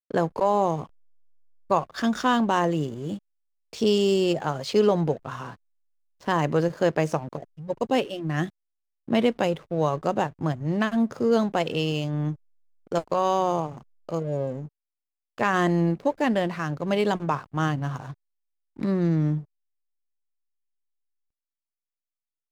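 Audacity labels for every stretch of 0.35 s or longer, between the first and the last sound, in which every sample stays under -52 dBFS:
0.870000	1.700000	silence
3.190000	3.730000	silence
5.560000	6.200000	silence
8.500000	9.080000	silence
12.360000	12.870000	silence
14.680000	15.380000	silence
18.140000	18.760000	silence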